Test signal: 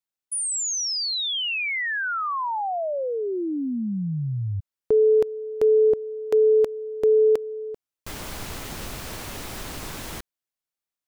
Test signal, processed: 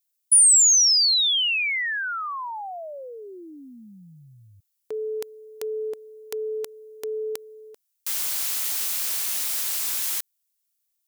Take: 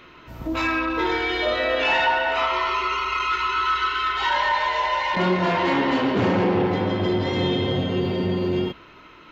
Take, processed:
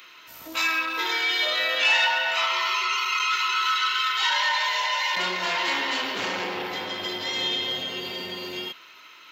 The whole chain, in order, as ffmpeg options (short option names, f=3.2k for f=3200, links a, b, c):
-filter_complex "[0:a]aderivative,asplit=2[a][b];[b]asoftclip=type=tanh:threshold=-23.5dB,volume=-6.5dB[c];[a][c]amix=inputs=2:normalize=0,volume=8.5dB"